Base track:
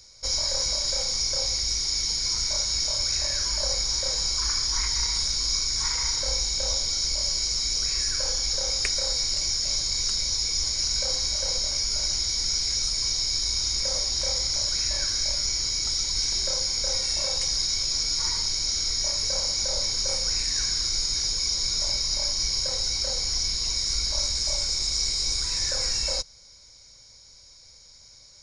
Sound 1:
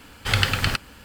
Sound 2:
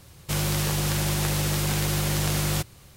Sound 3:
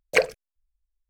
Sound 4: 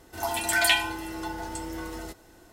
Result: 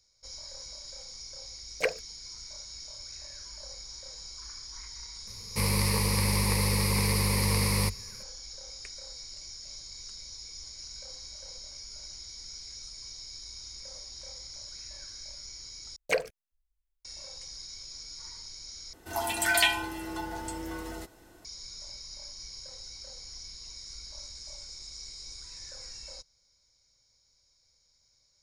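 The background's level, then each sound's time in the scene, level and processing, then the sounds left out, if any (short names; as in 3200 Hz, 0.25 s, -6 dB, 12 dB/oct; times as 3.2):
base track -18 dB
1.67 add 3 -8.5 dB
5.27 add 2 -4 dB + ripple EQ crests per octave 0.89, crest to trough 16 dB
15.96 replace with 3 -4 dB + limiter -9 dBFS
18.93 replace with 4 -2 dB
not used: 1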